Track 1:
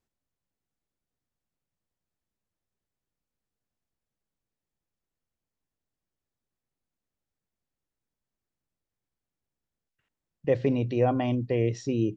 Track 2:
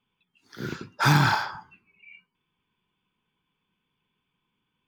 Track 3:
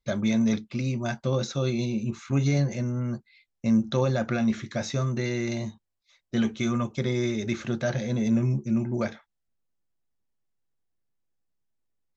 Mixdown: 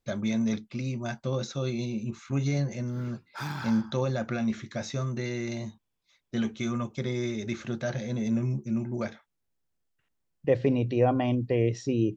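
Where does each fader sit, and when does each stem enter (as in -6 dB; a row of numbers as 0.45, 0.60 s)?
+0.5, -15.5, -4.0 dB; 0.00, 2.35, 0.00 s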